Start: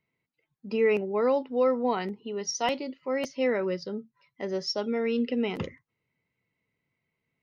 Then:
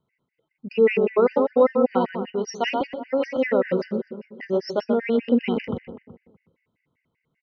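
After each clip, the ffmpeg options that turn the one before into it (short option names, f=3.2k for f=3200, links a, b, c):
-filter_complex "[0:a]lowpass=2.9k,asplit=2[a][b];[b]adelay=124,lowpass=f=2.2k:p=1,volume=-5.5dB,asplit=2[c][d];[d]adelay=124,lowpass=f=2.2k:p=1,volume=0.53,asplit=2[e][f];[f]adelay=124,lowpass=f=2.2k:p=1,volume=0.53,asplit=2[g][h];[h]adelay=124,lowpass=f=2.2k:p=1,volume=0.53,asplit=2[i][j];[j]adelay=124,lowpass=f=2.2k:p=1,volume=0.53,asplit=2[k][l];[l]adelay=124,lowpass=f=2.2k:p=1,volume=0.53,asplit=2[m][n];[n]adelay=124,lowpass=f=2.2k:p=1,volume=0.53[o];[c][e][g][i][k][m][o]amix=inputs=7:normalize=0[p];[a][p]amix=inputs=2:normalize=0,afftfilt=real='re*gt(sin(2*PI*5.1*pts/sr)*(1-2*mod(floor(b*sr/1024/1500),2)),0)':imag='im*gt(sin(2*PI*5.1*pts/sr)*(1-2*mod(floor(b*sr/1024/1500),2)),0)':win_size=1024:overlap=0.75,volume=8dB"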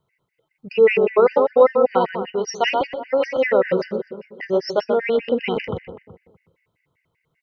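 -af "equalizer=f=240:w=2.2:g=-12.5,volume=5.5dB"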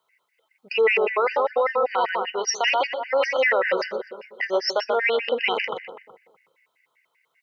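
-af "highpass=820,alimiter=limit=-19dB:level=0:latency=1:release=17,volume=6.5dB"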